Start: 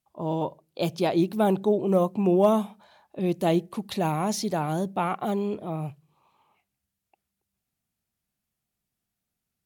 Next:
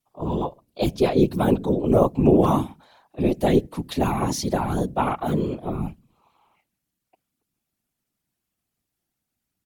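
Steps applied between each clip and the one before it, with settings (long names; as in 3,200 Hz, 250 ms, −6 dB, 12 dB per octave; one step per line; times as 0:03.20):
comb filter 5.6 ms, depth 84%
random phases in short frames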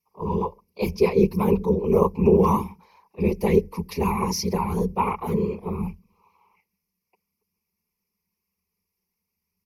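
EQ curve with evenly spaced ripples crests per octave 0.83, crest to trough 18 dB
level −4.5 dB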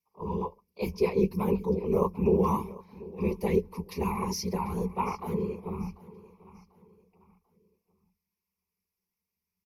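double-tracking delay 16 ms −13.5 dB
repeating echo 742 ms, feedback 36%, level −19.5 dB
level −7 dB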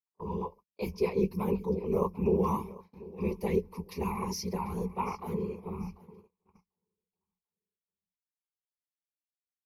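noise gate −49 dBFS, range −27 dB
level −3 dB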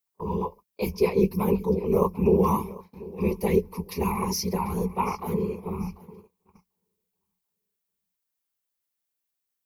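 high-shelf EQ 11,000 Hz +11 dB
level +6.5 dB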